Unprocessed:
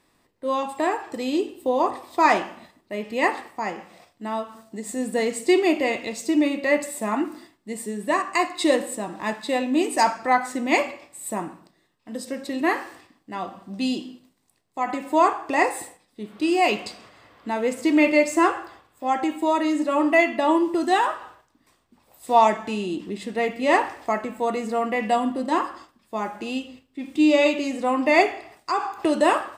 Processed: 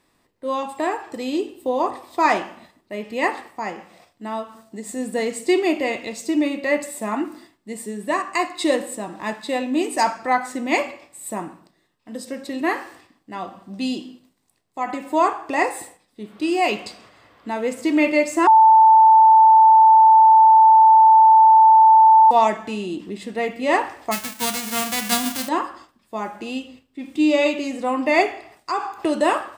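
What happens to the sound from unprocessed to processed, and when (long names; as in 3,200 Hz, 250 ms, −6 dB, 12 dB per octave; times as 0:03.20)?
0:18.47–0:22.31: beep over 884 Hz −7.5 dBFS
0:24.11–0:25.47: spectral envelope flattened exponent 0.1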